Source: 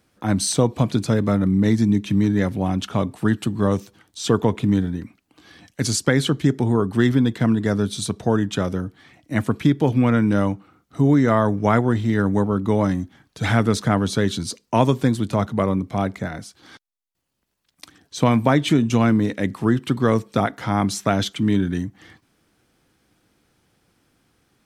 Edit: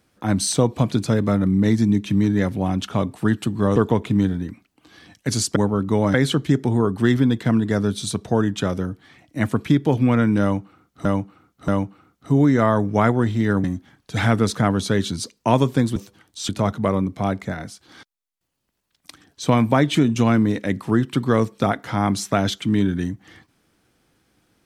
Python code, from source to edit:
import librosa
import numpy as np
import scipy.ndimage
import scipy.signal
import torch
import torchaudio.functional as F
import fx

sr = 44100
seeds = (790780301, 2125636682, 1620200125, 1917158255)

y = fx.edit(x, sr, fx.move(start_s=3.76, length_s=0.53, to_s=15.23),
    fx.repeat(start_s=10.37, length_s=0.63, count=3),
    fx.move(start_s=12.33, length_s=0.58, to_s=6.09), tone=tone)